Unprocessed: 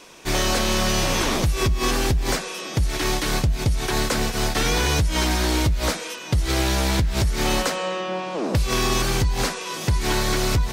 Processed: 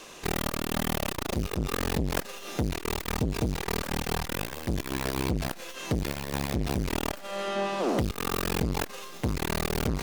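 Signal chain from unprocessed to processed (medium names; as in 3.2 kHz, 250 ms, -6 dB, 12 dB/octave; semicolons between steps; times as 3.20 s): tracing distortion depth 0.22 ms; peak limiter -15 dBFS, peak gain reduction 3 dB; tape speed +7%; transformer saturation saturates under 340 Hz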